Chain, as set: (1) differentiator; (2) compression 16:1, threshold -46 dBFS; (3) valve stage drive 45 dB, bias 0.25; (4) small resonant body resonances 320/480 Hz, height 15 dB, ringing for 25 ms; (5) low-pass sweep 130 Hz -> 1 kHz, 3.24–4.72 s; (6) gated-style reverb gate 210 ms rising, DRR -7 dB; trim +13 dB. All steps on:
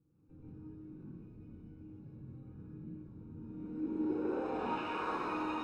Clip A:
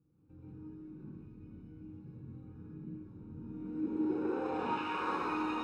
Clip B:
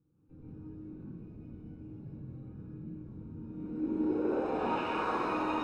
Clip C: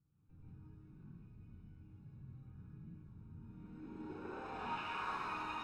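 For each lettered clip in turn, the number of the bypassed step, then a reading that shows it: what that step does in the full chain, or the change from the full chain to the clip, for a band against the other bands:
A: 3, loudness change +2.5 LU; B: 2, mean gain reduction 6.0 dB; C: 4, 250 Hz band -9.5 dB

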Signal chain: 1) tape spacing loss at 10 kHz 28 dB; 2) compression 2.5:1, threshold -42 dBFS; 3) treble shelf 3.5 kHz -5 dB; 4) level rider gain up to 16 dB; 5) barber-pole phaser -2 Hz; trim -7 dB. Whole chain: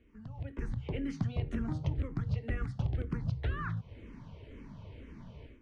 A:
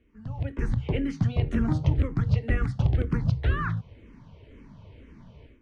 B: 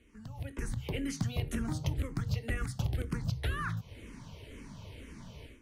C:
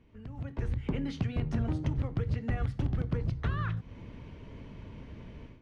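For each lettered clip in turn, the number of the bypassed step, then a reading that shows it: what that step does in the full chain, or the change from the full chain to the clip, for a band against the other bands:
2, mean gain reduction 7.0 dB; 1, 4 kHz band +8.5 dB; 5, loudness change +3.0 LU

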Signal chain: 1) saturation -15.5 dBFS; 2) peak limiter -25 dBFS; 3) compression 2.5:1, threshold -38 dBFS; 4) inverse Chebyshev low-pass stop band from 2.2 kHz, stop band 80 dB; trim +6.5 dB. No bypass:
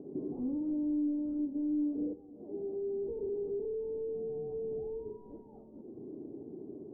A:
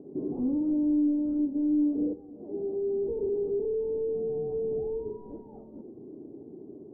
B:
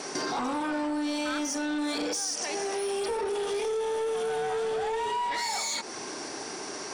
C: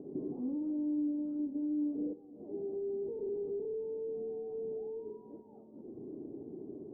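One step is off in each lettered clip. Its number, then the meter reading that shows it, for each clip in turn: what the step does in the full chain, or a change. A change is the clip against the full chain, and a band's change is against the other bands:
3, mean gain reduction 5.5 dB; 4, momentary loudness spread change -8 LU; 1, momentary loudness spread change -2 LU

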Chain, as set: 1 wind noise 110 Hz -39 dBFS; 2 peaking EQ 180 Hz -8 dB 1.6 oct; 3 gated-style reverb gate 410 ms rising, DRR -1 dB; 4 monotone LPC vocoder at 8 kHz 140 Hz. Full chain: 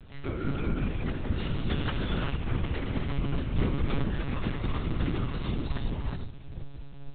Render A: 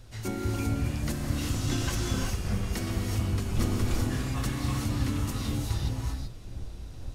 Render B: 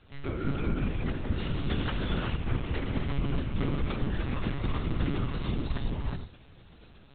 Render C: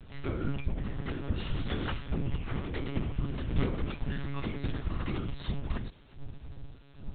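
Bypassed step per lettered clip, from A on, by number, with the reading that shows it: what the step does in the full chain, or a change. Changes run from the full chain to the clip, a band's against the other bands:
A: 4, 4 kHz band +3.0 dB; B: 1, momentary loudness spread change -5 LU; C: 3, momentary loudness spread change +6 LU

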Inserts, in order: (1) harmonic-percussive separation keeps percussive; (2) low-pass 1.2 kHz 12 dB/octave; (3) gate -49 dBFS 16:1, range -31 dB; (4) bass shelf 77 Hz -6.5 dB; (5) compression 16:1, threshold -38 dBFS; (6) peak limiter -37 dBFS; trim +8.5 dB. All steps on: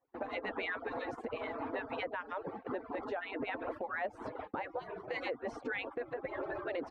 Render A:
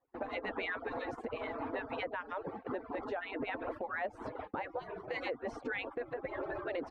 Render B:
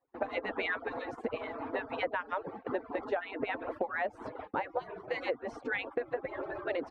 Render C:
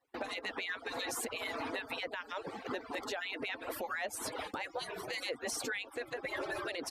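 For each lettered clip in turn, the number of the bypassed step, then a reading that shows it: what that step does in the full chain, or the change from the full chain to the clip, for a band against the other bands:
4, 125 Hz band +2.0 dB; 6, crest factor change +6.5 dB; 2, loudness change +1.0 LU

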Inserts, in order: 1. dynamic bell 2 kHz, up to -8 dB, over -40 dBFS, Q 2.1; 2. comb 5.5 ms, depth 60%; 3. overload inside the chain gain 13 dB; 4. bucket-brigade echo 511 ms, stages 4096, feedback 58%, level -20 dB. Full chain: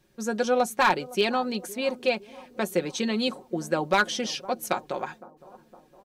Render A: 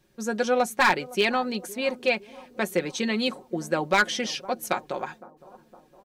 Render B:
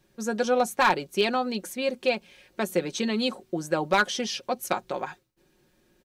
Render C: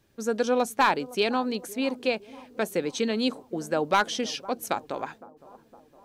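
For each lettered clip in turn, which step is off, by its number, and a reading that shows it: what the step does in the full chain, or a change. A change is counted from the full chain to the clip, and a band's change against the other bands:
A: 1, 2 kHz band +3.0 dB; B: 4, echo-to-direct -22.5 dB to none; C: 2, 125 Hz band -2.5 dB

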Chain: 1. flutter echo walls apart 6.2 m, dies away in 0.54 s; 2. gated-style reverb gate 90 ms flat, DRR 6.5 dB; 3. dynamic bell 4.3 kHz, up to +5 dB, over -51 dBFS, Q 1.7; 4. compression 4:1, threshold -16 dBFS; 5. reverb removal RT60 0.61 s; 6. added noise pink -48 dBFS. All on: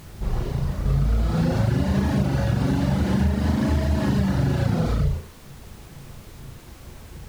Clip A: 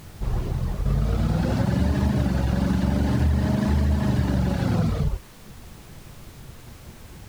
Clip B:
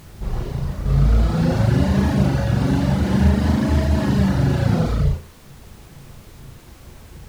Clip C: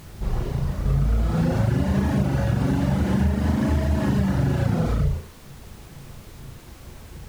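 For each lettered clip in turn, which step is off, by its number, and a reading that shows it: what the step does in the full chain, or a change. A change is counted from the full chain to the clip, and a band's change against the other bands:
1, momentary loudness spread change -15 LU; 4, mean gain reduction 2.0 dB; 3, 4 kHz band -2.5 dB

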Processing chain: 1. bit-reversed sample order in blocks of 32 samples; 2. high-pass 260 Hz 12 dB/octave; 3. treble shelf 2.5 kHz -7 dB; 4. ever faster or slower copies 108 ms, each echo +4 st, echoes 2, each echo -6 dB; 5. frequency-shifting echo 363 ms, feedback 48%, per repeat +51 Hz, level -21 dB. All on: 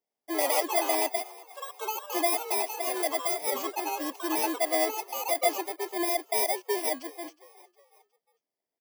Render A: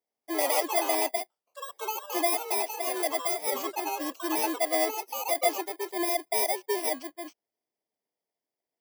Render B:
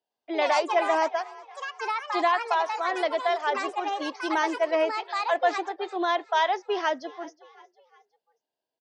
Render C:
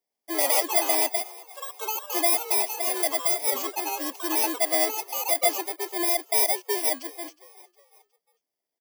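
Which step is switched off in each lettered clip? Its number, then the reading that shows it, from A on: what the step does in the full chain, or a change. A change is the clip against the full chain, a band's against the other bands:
5, echo-to-direct -20.0 dB to none; 1, 8 kHz band -17.5 dB; 3, 8 kHz band +6.0 dB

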